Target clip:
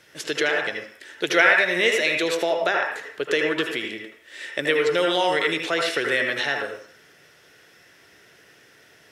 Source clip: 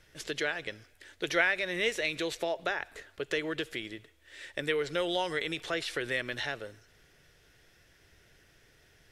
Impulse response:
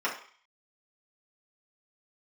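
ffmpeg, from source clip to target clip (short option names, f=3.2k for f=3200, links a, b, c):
-filter_complex "[0:a]highpass=180,asplit=2[a][b];[1:a]atrim=start_sample=2205,adelay=75[c];[b][c]afir=irnorm=-1:irlink=0,volume=-11dB[d];[a][d]amix=inputs=2:normalize=0,volume=8.5dB"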